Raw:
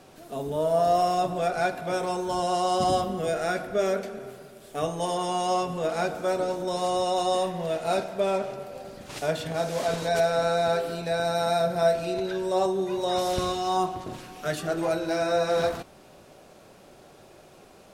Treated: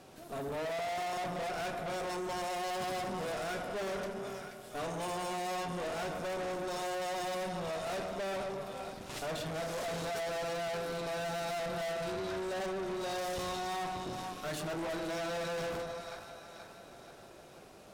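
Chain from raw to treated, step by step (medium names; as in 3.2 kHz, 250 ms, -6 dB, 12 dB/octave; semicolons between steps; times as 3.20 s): two-band feedback delay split 760 Hz, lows 130 ms, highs 480 ms, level -11.5 dB; valve stage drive 35 dB, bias 0.65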